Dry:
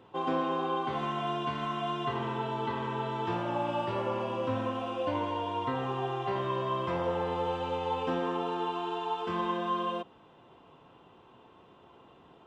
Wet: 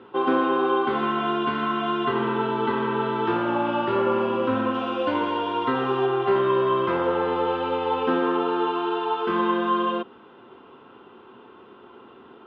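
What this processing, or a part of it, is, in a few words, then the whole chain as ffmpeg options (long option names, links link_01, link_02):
guitar cabinet: -filter_complex "[0:a]highpass=83,equalizer=frequency=97:width_type=q:width=4:gain=-8,equalizer=frequency=160:width_type=q:width=4:gain=-10,equalizer=frequency=230:width_type=q:width=4:gain=7,equalizer=frequency=390:width_type=q:width=4:gain=8,equalizer=frequency=650:width_type=q:width=4:gain=-5,equalizer=frequency=1400:width_type=q:width=4:gain=9,lowpass=frequency=4100:width=0.5412,lowpass=frequency=4100:width=1.3066,asettb=1/sr,asplit=3[link_01][link_02][link_03];[link_01]atrim=end=4.744[link_04];[link_02]atrim=start=4.74:end=6.06,asetpts=PTS-STARTPTS,afade=type=in:duration=0.004:curve=qsin,afade=type=out:start_time=1.316:duration=0.004:curve=qsin,aemphasis=mode=production:type=50fm[link_05];[link_03]atrim=start=6.056[link_06];[link_04][link_05]acrossfade=duration=0.004:curve1=hsin:curve2=qsin[link_07];[link_07][link_06]acrossfade=duration=0.004:curve1=qsin:curve2=hsin,volume=6.5dB"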